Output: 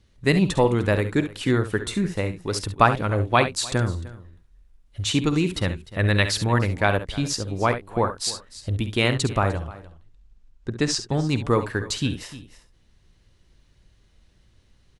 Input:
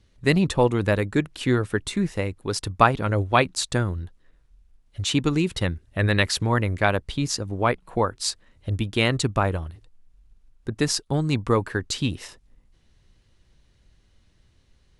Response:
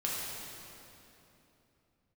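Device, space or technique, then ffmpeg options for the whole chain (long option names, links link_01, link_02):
ducked delay: -filter_complex "[0:a]asettb=1/sr,asplit=3[link_01][link_02][link_03];[link_01]atrim=end=9.554[link_04];[link_02]atrim=start=9.55:end=11.15,asetpts=PTS-STARTPTS,afade=type=in:duration=0.004:curve=qsin,afade=type=out:start_time=1.596:duration=0.004:curve=qsin,lowpass=frequency=8200:width=0.5412,lowpass=frequency=8200:width=1.3066[link_05];[link_03]atrim=start=11.146[link_06];[link_04][link_05]acrossfade=duration=0.004:curve1=hsin:curve2=qsin[link_07];[link_07][link_06]acrossfade=duration=0.004:curve1=qsin:curve2=hsin,aecho=1:1:51|68:0.178|0.266,asplit=3[link_08][link_09][link_10];[link_09]adelay=302,volume=-5dB[link_11];[link_10]apad=whole_len=677503[link_12];[link_11][link_12]sidechaincompress=threshold=-32dB:ratio=8:attack=31:release=1420[link_13];[link_08][link_13]amix=inputs=2:normalize=0"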